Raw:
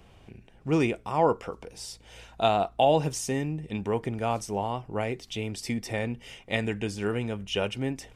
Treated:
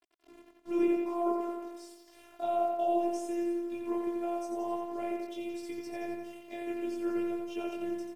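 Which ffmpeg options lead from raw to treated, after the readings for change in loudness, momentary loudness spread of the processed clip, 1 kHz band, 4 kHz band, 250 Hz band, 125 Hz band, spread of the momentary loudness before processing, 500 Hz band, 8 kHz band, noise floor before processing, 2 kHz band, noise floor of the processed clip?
-5.5 dB, 12 LU, -6.5 dB, -17.5 dB, -1.5 dB, under -25 dB, 14 LU, -5.0 dB, -14.5 dB, -55 dBFS, -13.0 dB, -60 dBFS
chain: -filter_complex "[0:a]bandreject=f=432.8:t=h:w=4,bandreject=f=865.6:t=h:w=4,bandreject=f=1.2984k:t=h:w=4,bandreject=f=1.7312k:t=h:w=4,bandreject=f=2.164k:t=h:w=4,bandreject=f=2.5968k:t=h:w=4,bandreject=f=3.0296k:t=h:w=4,bandreject=f=3.4624k:t=h:w=4,bandreject=f=3.8952k:t=h:w=4,bandreject=f=4.328k:t=h:w=4,bandreject=f=4.7608k:t=h:w=4,bandreject=f=5.1936k:t=h:w=4,bandreject=f=5.6264k:t=h:w=4,bandreject=f=6.0592k:t=h:w=4,bandreject=f=6.492k:t=h:w=4,bandreject=f=6.9248k:t=h:w=4,bandreject=f=7.3576k:t=h:w=4,bandreject=f=7.7904k:t=h:w=4,bandreject=f=8.2232k:t=h:w=4,bandreject=f=8.656k:t=h:w=4,bandreject=f=9.0888k:t=h:w=4,bandreject=f=9.5216k:t=h:w=4,bandreject=f=9.9544k:t=h:w=4,bandreject=f=10.3872k:t=h:w=4,bandreject=f=10.82k:t=h:w=4,bandreject=f=11.2528k:t=h:w=4,bandreject=f=11.6856k:t=h:w=4,bandreject=f=12.1184k:t=h:w=4,bandreject=f=12.5512k:t=h:w=4,bandreject=f=12.984k:t=h:w=4,acrossover=split=550[a][b];[b]alimiter=limit=-23dB:level=0:latency=1[c];[a][c]amix=inputs=2:normalize=0,flanger=delay=16.5:depth=4.9:speed=0.83,acrusher=bits=7:mix=0:aa=0.000001,bandpass=f=420:t=q:w=0.92:csg=0,crystalizer=i=6:c=0,afftfilt=real='hypot(re,im)*cos(PI*b)':imag='0':win_size=512:overlap=0.75,asplit=2[d][e];[e]aecho=0:1:87|174|261|348|435|522|609|696:0.562|0.337|0.202|0.121|0.0729|0.0437|0.0262|0.0157[f];[d][f]amix=inputs=2:normalize=0"

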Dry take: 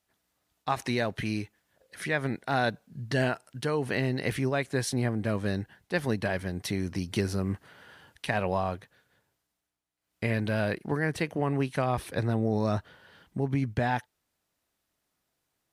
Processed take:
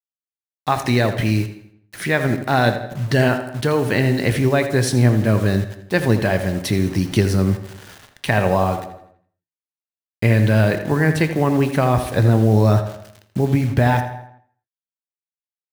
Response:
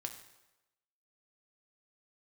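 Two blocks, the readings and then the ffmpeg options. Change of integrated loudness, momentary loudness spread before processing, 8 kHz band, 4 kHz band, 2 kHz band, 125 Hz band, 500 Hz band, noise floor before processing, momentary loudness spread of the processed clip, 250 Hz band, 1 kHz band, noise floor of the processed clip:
+11.5 dB, 6 LU, +10.0 dB, +9.5 dB, +9.5 dB, +14.0 dB, +11.0 dB, -81 dBFS, 9 LU, +11.5 dB, +10.0 dB, under -85 dBFS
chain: -filter_complex "[0:a]acrusher=bits=7:mix=0:aa=0.000001,asplit=2[a][b];[b]adelay=82,lowpass=f=3.6k:p=1,volume=-10.5dB,asplit=2[c][d];[d]adelay=82,lowpass=f=3.6k:p=1,volume=0.5,asplit=2[e][f];[f]adelay=82,lowpass=f=3.6k:p=1,volume=0.5,asplit=2[g][h];[h]adelay=82,lowpass=f=3.6k:p=1,volume=0.5,asplit=2[i][j];[j]adelay=82,lowpass=f=3.6k:p=1,volume=0.5[k];[a][c][e][g][i][k]amix=inputs=6:normalize=0,asplit=2[l][m];[1:a]atrim=start_sample=2205,afade=t=out:st=0.32:d=0.01,atrim=end_sample=14553,lowshelf=f=410:g=6.5[n];[m][n]afir=irnorm=-1:irlink=0,volume=1.5dB[o];[l][o]amix=inputs=2:normalize=0,volume=3.5dB"

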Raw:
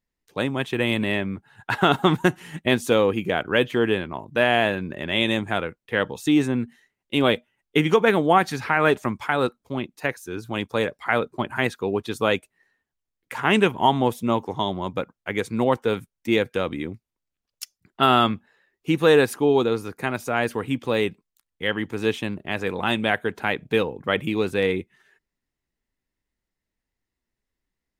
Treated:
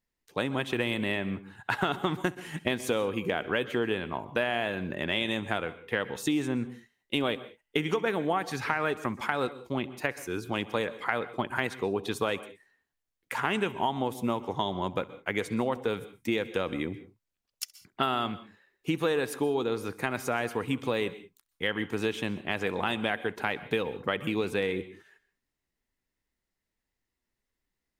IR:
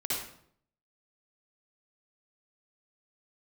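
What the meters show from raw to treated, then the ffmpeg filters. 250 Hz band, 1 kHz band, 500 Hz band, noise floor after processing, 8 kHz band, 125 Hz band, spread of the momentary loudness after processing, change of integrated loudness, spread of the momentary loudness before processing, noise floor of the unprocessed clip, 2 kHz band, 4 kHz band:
-7.5 dB, -8.0 dB, -8.0 dB, under -85 dBFS, -3.5 dB, -8.0 dB, 7 LU, -8.0 dB, 11 LU, -85 dBFS, -6.5 dB, -7.0 dB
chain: -filter_complex "[0:a]lowshelf=f=340:g=-3,acompressor=threshold=-25dB:ratio=6,asplit=2[a][b];[1:a]atrim=start_sample=2205,atrim=end_sample=6615,adelay=67[c];[b][c]afir=irnorm=-1:irlink=0,volume=-20.5dB[d];[a][d]amix=inputs=2:normalize=0"

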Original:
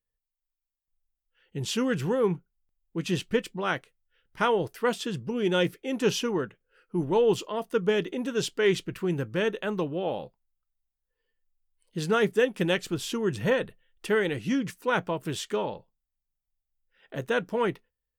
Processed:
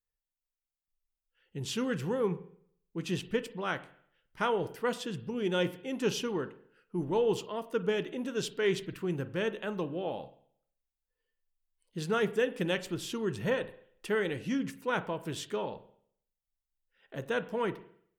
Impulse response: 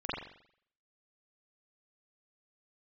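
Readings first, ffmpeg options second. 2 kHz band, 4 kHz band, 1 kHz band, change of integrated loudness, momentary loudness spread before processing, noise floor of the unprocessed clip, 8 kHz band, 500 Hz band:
-5.5 dB, -5.5 dB, -5.0 dB, -5.0 dB, 10 LU, under -85 dBFS, -5.5 dB, -5.5 dB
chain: -filter_complex "[0:a]asplit=2[a][b];[1:a]atrim=start_sample=2205[c];[b][c]afir=irnorm=-1:irlink=0,volume=-18.5dB[d];[a][d]amix=inputs=2:normalize=0,volume=-6dB"

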